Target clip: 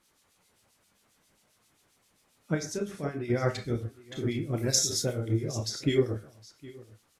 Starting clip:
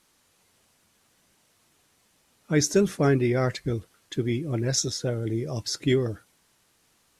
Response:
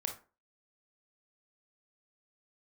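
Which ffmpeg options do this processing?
-filter_complex "[0:a]asettb=1/sr,asplit=3[s0][s1][s2];[s0]atrim=end=2.544[s3];[s1]atrim=start=2.54:end=3.3,asetpts=PTS-STARTPTS,afade=t=in:d=0.004:c=qsin,afade=t=out:st=0.756:d=0.004:c=qsin,acompressor=threshold=0.0447:ratio=6[s4];[s2]atrim=start=3.296[s5];[s3][s4]acrossfade=d=0.004:c1=hsin:c2=qsin[s6];[s6][s5]acrossfade=d=0.004:c1=qsin:c2=hsin,asettb=1/sr,asplit=3[s7][s8][s9];[s7]atrim=end=4.574[s10];[s8]atrim=start=4.57:end=5.13,asetpts=PTS-STARTPTS,afade=t=in:d=0.004:c=qsin,afade=t=out:st=0.556:d=0.004:c=qsin,aemphasis=mode=production:type=50fm[s11];[s9]atrim=start=5.126[s12];[s10][s11]acrossfade=d=0.004:c1=hsin:c2=qsin[s13];[s13][s12]acrossfade=d=0.004:c1=qsin:c2=hsin,aecho=1:1:761:0.0944[s14];[1:a]atrim=start_sample=2205[s15];[s14][s15]afir=irnorm=-1:irlink=0,acrossover=split=2400[s16][s17];[s16]aeval=exprs='val(0)*(1-0.7/2+0.7/2*cos(2*PI*7.5*n/s))':c=same[s18];[s17]aeval=exprs='val(0)*(1-0.7/2-0.7/2*cos(2*PI*7.5*n/s))':c=same[s19];[s18][s19]amix=inputs=2:normalize=0"

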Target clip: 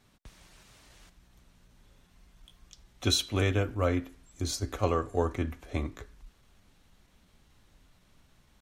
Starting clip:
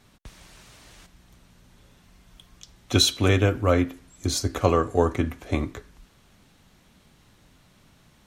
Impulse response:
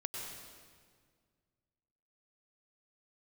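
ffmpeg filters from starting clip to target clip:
-af "atempo=0.96,asubboost=boost=2.5:cutoff=72,volume=0.447"

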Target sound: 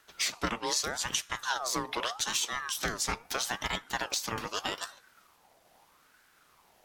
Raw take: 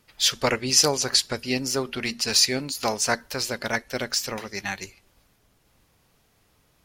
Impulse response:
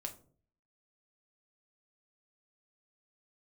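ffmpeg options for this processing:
-filter_complex "[0:a]acompressor=threshold=0.0355:ratio=6,asplit=2[s0][s1];[1:a]atrim=start_sample=2205[s2];[s1][s2]afir=irnorm=-1:irlink=0,volume=0.299[s3];[s0][s3]amix=inputs=2:normalize=0,aeval=exprs='val(0)*sin(2*PI*1100*n/s+1100*0.4/0.8*sin(2*PI*0.8*n/s))':c=same,volume=1.19"

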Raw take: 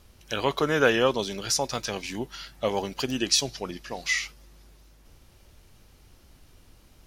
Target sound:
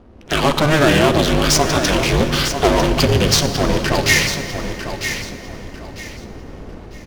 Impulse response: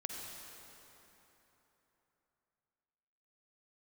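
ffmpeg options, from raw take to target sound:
-filter_complex "[0:a]highpass=130,aemphasis=mode=production:type=50kf,dynaudnorm=f=110:g=5:m=2.82,asplit=2[s0][s1];[s1]alimiter=limit=0.0631:level=0:latency=1:release=95,volume=1.26[s2];[s0][s2]amix=inputs=2:normalize=0,aeval=exprs='0.299*(cos(1*acos(clip(val(0)/0.299,-1,1)))-cos(1*PI/2))+0.0944*(cos(5*acos(clip(val(0)/0.299,-1,1)))-cos(5*PI/2))+0.0299*(cos(8*acos(clip(val(0)/0.299,-1,1)))-cos(8*PI/2))':c=same,adynamicsmooth=sensitivity=1.5:basefreq=770,aeval=exprs='val(0)*sin(2*PI*150*n/s)':c=same,aecho=1:1:949|1898|2847:0.355|0.0993|0.0278,asplit=2[s3][s4];[1:a]atrim=start_sample=2205,lowshelf=f=240:g=11[s5];[s4][s5]afir=irnorm=-1:irlink=0,volume=0.668[s6];[s3][s6]amix=inputs=2:normalize=0"

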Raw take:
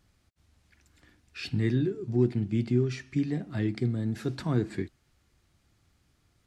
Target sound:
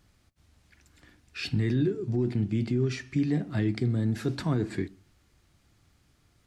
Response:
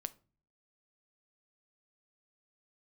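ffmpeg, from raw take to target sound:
-filter_complex "[0:a]alimiter=limit=0.0841:level=0:latency=1:release=19,asplit=2[s0][s1];[1:a]atrim=start_sample=2205[s2];[s1][s2]afir=irnorm=-1:irlink=0,volume=1.26[s3];[s0][s3]amix=inputs=2:normalize=0,volume=0.75"

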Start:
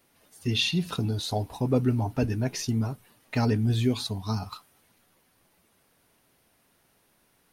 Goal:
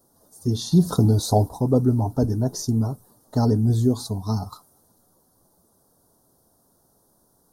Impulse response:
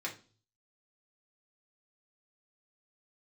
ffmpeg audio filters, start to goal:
-filter_complex "[0:a]asettb=1/sr,asplit=3[s0][s1][s2];[s0]atrim=end=0.714[s3];[s1]atrim=start=0.71:end=1.49,asetpts=PTS-STARTPTS,afade=t=in:d=0.004:c=qsin,afade=t=out:st=0.776:d=0.004:c=qsin,acontrast=46[s4];[s2]atrim=start=1.486[s5];[s3][s4]acrossfade=d=0.004:c1=hsin:c2=qsin[s6];[s6][s5]acrossfade=d=0.004:c1=qsin:c2=hsin,asuperstop=centerf=2400:order=4:qfactor=0.54,volume=1.78"

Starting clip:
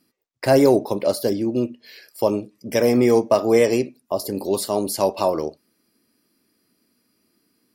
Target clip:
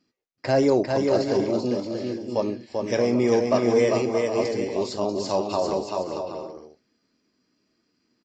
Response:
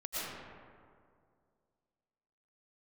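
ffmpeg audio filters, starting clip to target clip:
-af "aecho=1:1:370|592|725.2|805.1|853.1:0.631|0.398|0.251|0.158|0.1,atempo=0.94,volume=0.562" -ar 16000 -c:a aac -b:a 32k

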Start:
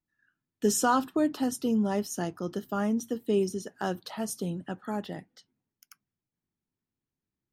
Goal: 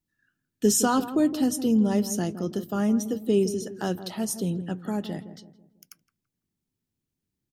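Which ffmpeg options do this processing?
-filter_complex "[0:a]equalizer=f=1100:t=o:w=2.2:g=-8,asplit=2[s0][s1];[s1]adelay=165,lowpass=f=930:p=1,volume=0.282,asplit=2[s2][s3];[s3]adelay=165,lowpass=f=930:p=1,volume=0.45,asplit=2[s4][s5];[s5]adelay=165,lowpass=f=930:p=1,volume=0.45,asplit=2[s6][s7];[s7]adelay=165,lowpass=f=930:p=1,volume=0.45,asplit=2[s8][s9];[s9]adelay=165,lowpass=f=930:p=1,volume=0.45[s10];[s2][s4][s6][s8][s10]amix=inputs=5:normalize=0[s11];[s0][s11]amix=inputs=2:normalize=0,volume=2"

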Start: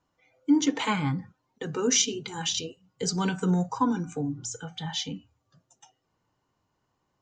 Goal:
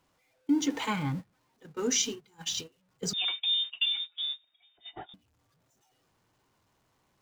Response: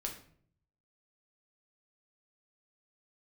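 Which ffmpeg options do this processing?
-filter_complex "[0:a]aeval=exprs='val(0)+0.5*0.0141*sgn(val(0))':c=same,agate=range=0.0631:threshold=0.0355:ratio=16:detection=peak,asettb=1/sr,asplit=3[s0][s1][s2];[s0]atrim=end=3.134[s3];[s1]atrim=start=3.13:end=5.14,asetpts=PTS-STARTPTS,afade=t=in:d=0.004:c=qsin,afade=t=out:st=2.006:d=0.004:c=qsin,lowpass=f=3200:t=q:w=0.5098,lowpass=f=3200:t=q:w=0.6013,lowpass=f=3200:t=q:w=0.9,lowpass=f=3200:t=q:w=2.563,afreqshift=-3800[s4];[s2]atrim=start=5.136[s5];[s3][s4]acrossfade=d=0.004:c1=hsin:c2=qsin[s6];[s6][s5]acrossfade=d=0.004:c1=qsin:c2=hsin,volume=0.562"

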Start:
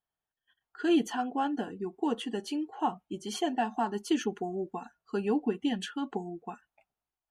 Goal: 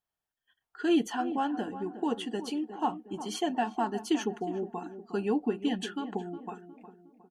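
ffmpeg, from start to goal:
-filter_complex "[0:a]asplit=2[s0][s1];[s1]adelay=361,lowpass=f=1100:p=1,volume=0.282,asplit=2[s2][s3];[s3]adelay=361,lowpass=f=1100:p=1,volume=0.46,asplit=2[s4][s5];[s5]adelay=361,lowpass=f=1100:p=1,volume=0.46,asplit=2[s6][s7];[s7]adelay=361,lowpass=f=1100:p=1,volume=0.46,asplit=2[s8][s9];[s9]adelay=361,lowpass=f=1100:p=1,volume=0.46[s10];[s0][s2][s4][s6][s8][s10]amix=inputs=6:normalize=0"

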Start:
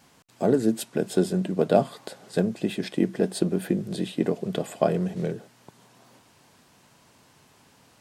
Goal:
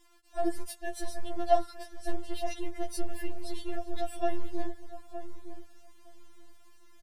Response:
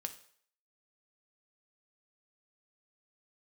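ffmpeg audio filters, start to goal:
-filter_complex "[0:a]asubboost=boost=7:cutoff=110,asetrate=50274,aresample=44100,acrossover=split=270|5900[s0][s1][s2];[s0]aeval=exprs='abs(val(0))':c=same[s3];[s3][s1][s2]amix=inputs=3:normalize=0,asplit=2[s4][s5];[s5]adelay=915,lowpass=f=920:p=1,volume=0.316,asplit=2[s6][s7];[s7]adelay=915,lowpass=f=920:p=1,volume=0.16[s8];[s4][s6][s8]amix=inputs=3:normalize=0,afftfilt=real='re*4*eq(mod(b,16),0)':imag='im*4*eq(mod(b,16),0)':win_size=2048:overlap=0.75,volume=0.596"

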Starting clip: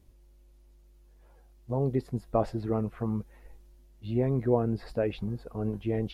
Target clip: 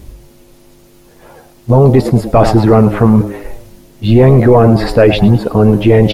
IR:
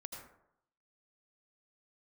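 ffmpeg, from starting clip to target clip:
-filter_complex "[0:a]bandreject=f=50:t=h:w=6,bandreject=f=100:t=h:w=6,asplit=5[s0][s1][s2][s3][s4];[s1]adelay=107,afreqshift=94,volume=0.126[s5];[s2]adelay=214,afreqshift=188,volume=0.0556[s6];[s3]adelay=321,afreqshift=282,volume=0.0243[s7];[s4]adelay=428,afreqshift=376,volume=0.0107[s8];[s0][s5][s6][s7][s8]amix=inputs=5:normalize=0,apsyclip=26.6,volume=0.841"

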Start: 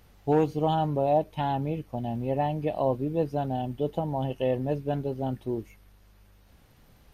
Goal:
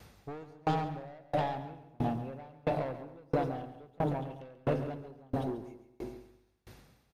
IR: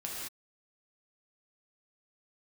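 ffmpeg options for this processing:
-filter_complex "[0:a]highpass=73,equalizer=f=8700:w=0.37:g=10,asplit=2[s0][s1];[s1]adelay=219,lowpass=f=2000:p=1,volume=0.355,asplit=2[s2][s3];[s3]adelay=219,lowpass=f=2000:p=1,volume=0.41,asplit=2[s4][s5];[s5]adelay=219,lowpass=f=2000:p=1,volume=0.41,asplit=2[s6][s7];[s7]adelay=219,lowpass=f=2000:p=1,volume=0.41,asplit=2[s8][s9];[s9]adelay=219,lowpass=f=2000:p=1,volume=0.41[s10];[s2][s4][s6][s8][s10]amix=inputs=5:normalize=0[s11];[s0][s11]amix=inputs=2:normalize=0,asoftclip=type=tanh:threshold=0.0501,aemphasis=mode=reproduction:type=50kf,bandreject=f=3000:w=13,asplit=2[s12][s13];[s13]aecho=0:1:138|276|414|552|690|828|966:0.501|0.276|0.152|0.0834|0.0459|0.0252|0.0139[s14];[s12][s14]amix=inputs=2:normalize=0,acompressor=threshold=0.0282:ratio=3,aeval=exprs='val(0)*pow(10,-34*if(lt(mod(1.5*n/s,1),2*abs(1.5)/1000),1-mod(1.5*n/s,1)/(2*abs(1.5)/1000),(mod(1.5*n/s,1)-2*abs(1.5)/1000)/(1-2*abs(1.5)/1000))/20)':c=same,volume=2.24"

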